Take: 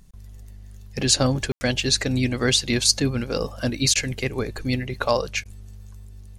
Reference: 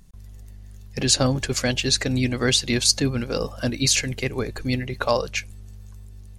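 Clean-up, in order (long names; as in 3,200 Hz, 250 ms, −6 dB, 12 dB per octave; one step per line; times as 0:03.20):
ambience match 0:01.52–0:01.61
repair the gap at 0:03.94/0:05.44, 13 ms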